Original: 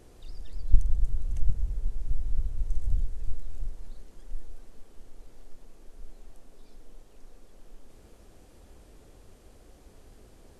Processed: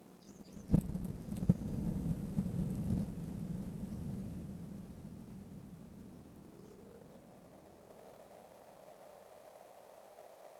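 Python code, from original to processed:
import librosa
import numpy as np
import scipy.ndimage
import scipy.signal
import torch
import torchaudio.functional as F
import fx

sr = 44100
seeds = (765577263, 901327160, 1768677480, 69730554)

p1 = fx.formant_shift(x, sr, semitones=5)
p2 = fx.filter_sweep_highpass(p1, sr, from_hz=190.0, to_hz=610.0, start_s=5.77, end_s=7.34, q=5.3)
p3 = fx.power_curve(p2, sr, exponent=1.4)
p4 = p3 + fx.echo_diffused(p3, sr, ms=1181, feedback_pct=42, wet_db=-4, dry=0)
y = F.gain(torch.from_numpy(p4), 6.0).numpy()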